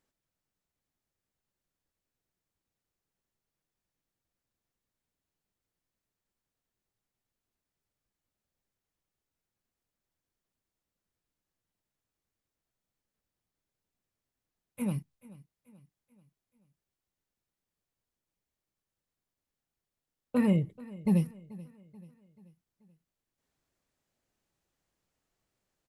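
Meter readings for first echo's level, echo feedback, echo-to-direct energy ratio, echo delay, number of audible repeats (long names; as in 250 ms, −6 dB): −20.0 dB, 48%, −19.0 dB, 434 ms, 3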